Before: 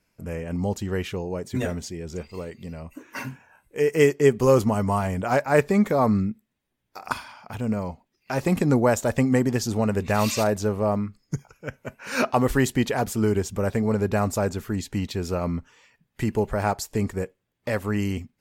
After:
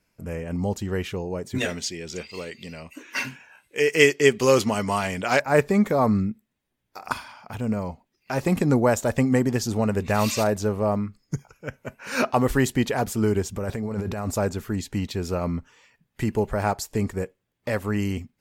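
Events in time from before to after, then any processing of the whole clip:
0:01.58–0:05.40: meter weighting curve D
0:13.57–0:14.31: compressor whose output falls as the input rises −28 dBFS

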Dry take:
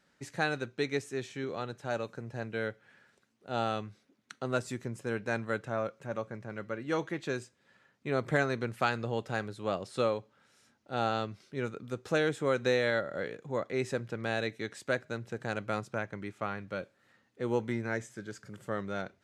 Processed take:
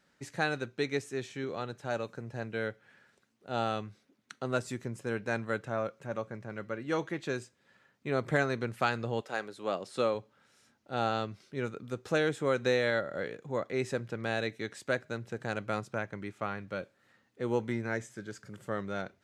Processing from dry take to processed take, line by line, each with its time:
0:09.20–0:10.14: high-pass filter 420 Hz → 130 Hz

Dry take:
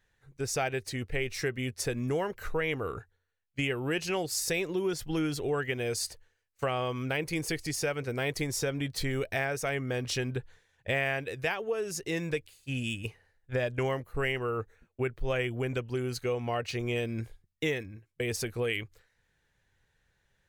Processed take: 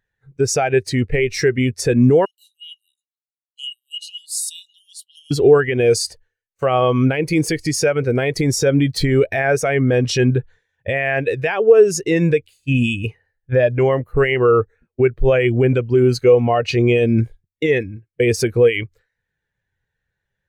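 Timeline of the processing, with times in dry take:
0:02.25–0:05.31: Chebyshev high-pass with heavy ripple 2,800 Hz, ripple 9 dB
whole clip: low-shelf EQ 69 Hz −8 dB; boost into a limiter +24.5 dB; every bin expanded away from the loudest bin 1.5 to 1; level −1 dB

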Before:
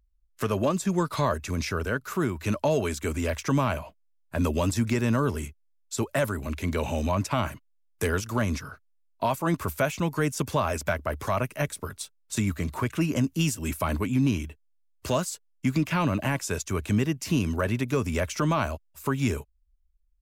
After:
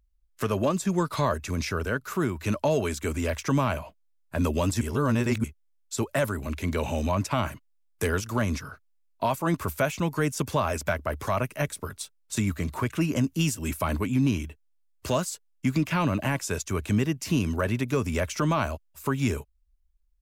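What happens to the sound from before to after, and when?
0:04.81–0:05.44: reverse

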